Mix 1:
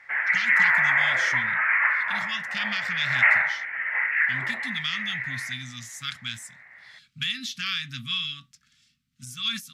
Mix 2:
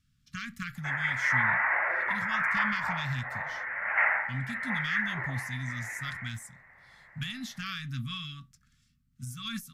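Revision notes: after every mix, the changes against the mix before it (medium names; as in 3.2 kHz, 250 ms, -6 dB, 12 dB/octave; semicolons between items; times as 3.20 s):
background: entry +0.75 s; master: remove frequency weighting D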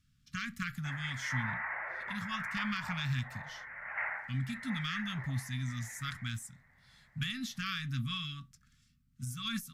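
background -9.5 dB; reverb: off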